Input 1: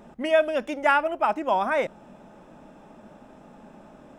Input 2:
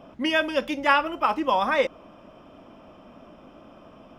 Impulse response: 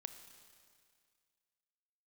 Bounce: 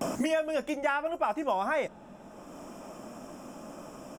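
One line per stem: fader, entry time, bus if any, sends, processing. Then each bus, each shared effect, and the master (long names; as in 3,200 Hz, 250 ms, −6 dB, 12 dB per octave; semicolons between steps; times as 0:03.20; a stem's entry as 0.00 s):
−1.5 dB, 0.00 s, no send, no processing
−2.5 dB, 12 ms, polarity flipped, no send, high shelf with overshoot 5,200 Hz +13.5 dB, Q 3; multiband upward and downward compressor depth 100%; automatic ducking −15 dB, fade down 0.80 s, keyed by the first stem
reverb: not used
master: downward compressor 6 to 1, threshold −25 dBFS, peak gain reduction 9 dB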